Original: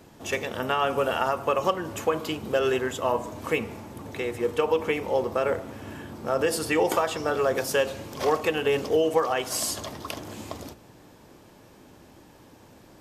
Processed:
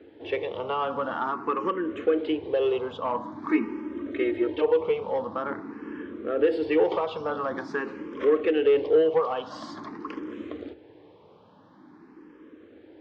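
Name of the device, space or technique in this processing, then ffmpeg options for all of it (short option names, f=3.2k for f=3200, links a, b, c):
barber-pole phaser into a guitar amplifier: -filter_complex "[0:a]asplit=2[a][b];[b]afreqshift=0.47[c];[a][c]amix=inputs=2:normalize=1,asoftclip=type=tanh:threshold=-19dB,highpass=110,equalizer=f=130:t=q:w=4:g=-8,equalizer=f=310:t=q:w=4:g=9,equalizer=f=450:t=q:w=4:g=7,equalizer=f=680:t=q:w=4:g=-5,equalizer=f=1.1k:t=q:w=4:g=3,equalizer=f=2.6k:t=q:w=4:g=-4,lowpass=f=3.4k:w=0.5412,lowpass=f=3.4k:w=1.3066,asettb=1/sr,asplit=3[d][e][f];[d]atrim=end=3.494[g];[e]atrim=start=3.49:end=4.62,asetpts=PTS-STARTPTS,afade=t=in:d=0.004:c=qsin,afade=t=out:st=1.126:d=0.004:c=qsin,aecho=1:1:3.2:0.98,atrim=end_sample=49833[h];[f]atrim=start=4.616[i];[g][h]acrossfade=d=0.004:c1=hsin:c2=qsin[j];[j][i]acrossfade=d=0.004:c1=qsin:c2=hsin"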